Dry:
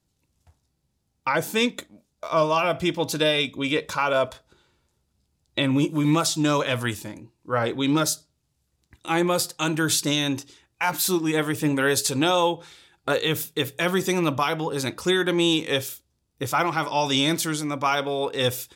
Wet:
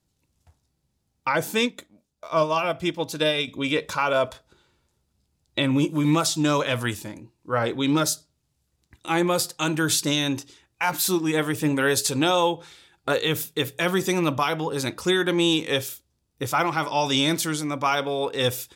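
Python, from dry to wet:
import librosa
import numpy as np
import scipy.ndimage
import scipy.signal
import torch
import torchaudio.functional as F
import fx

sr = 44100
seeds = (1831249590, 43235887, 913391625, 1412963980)

y = fx.upward_expand(x, sr, threshold_db=-29.0, expansion=1.5, at=(1.61, 3.48))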